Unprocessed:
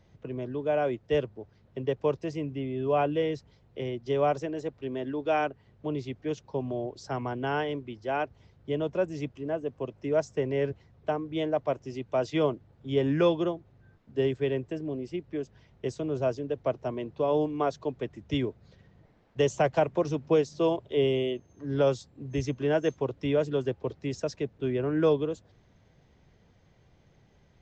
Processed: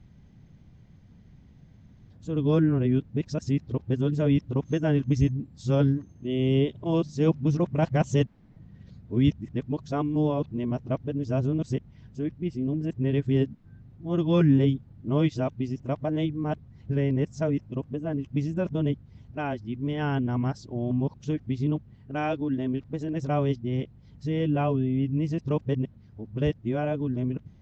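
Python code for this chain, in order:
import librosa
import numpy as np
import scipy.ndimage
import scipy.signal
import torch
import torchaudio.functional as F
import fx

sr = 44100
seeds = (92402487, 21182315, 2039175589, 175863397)

y = np.flip(x).copy()
y = fx.low_shelf_res(y, sr, hz=320.0, db=10.0, q=1.5)
y = y * librosa.db_to_amplitude(-1.5)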